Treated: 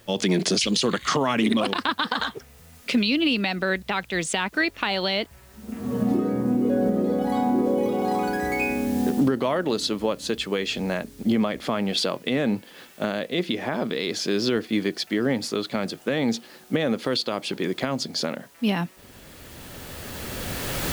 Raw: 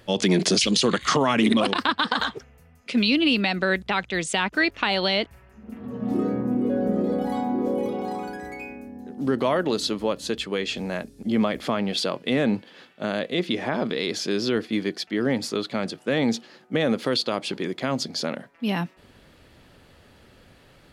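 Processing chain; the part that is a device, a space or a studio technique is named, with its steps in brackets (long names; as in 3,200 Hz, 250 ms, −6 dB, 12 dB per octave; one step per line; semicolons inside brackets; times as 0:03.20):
cheap recorder with automatic gain (white noise bed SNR 32 dB; camcorder AGC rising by 12 dB per second)
level −2 dB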